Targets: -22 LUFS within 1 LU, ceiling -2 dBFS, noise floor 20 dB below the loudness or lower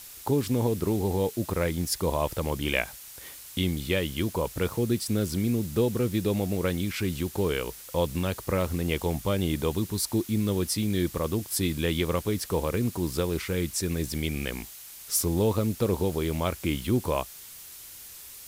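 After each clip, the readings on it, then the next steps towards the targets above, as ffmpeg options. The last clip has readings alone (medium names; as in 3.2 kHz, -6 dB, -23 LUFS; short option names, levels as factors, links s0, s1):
noise floor -45 dBFS; noise floor target -48 dBFS; loudness -28.0 LUFS; peak level -9.5 dBFS; loudness target -22.0 LUFS
-> -af "afftdn=nr=6:nf=-45"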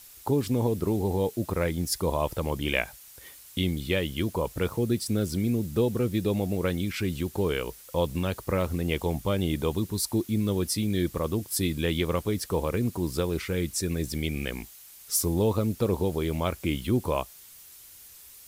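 noise floor -50 dBFS; loudness -28.0 LUFS; peak level -9.5 dBFS; loudness target -22.0 LUFS
-> -af "volume=2"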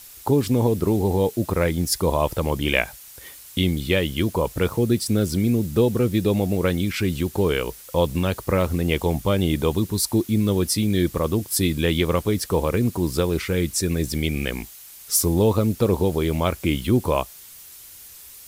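loudness -22.0 LUFS; peak level -3.5 dBFS; noise floor -44 dBFS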